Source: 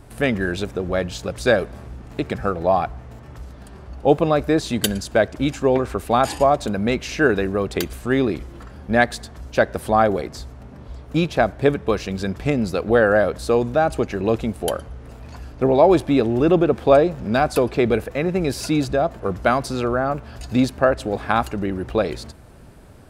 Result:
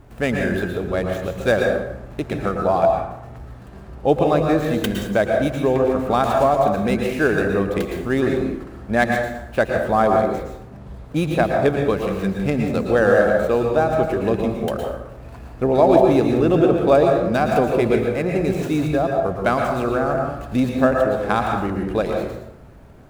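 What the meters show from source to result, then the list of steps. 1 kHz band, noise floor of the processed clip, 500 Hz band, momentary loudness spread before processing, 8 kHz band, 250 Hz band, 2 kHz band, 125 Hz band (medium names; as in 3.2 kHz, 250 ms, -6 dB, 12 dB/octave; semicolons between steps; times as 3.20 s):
+1.0 dB, -39 dBFS, +1.5 dB, 16 LU, no reading, +1.0 dB, 0.0 dB, +1.5 dB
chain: median filter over 9 samples; treble shelf 8.4 kHz +4 dB; plate-style reverb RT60 0.84 s, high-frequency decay 0.6×, pre-delay 100 ms, DRR 1.5 dB; trim -1.5 dB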